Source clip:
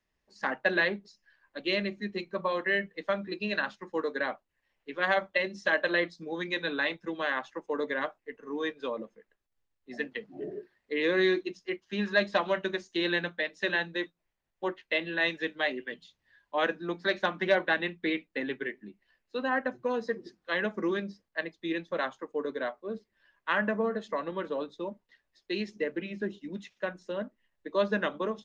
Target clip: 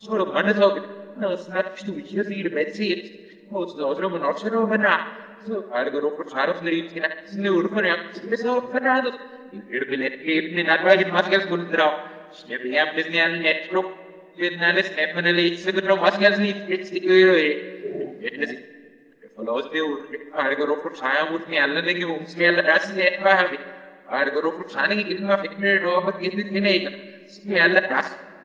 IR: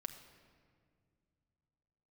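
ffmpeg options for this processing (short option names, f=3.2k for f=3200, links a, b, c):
-filter_complex "[0:a]areverse,aecho=1:1:70|140|210|280:0.237|0.0854|0.0307|0.0111,asplit=2[a][b];[1:a]atrim=start_sample=2205,lowshelf=f=130:g=-10.5[c];[b][c]afir=irnorm=-1:irlink=0,volume=2.5dB[d];[a][d]amix=inputs=2:normalize=0,volume=4dB"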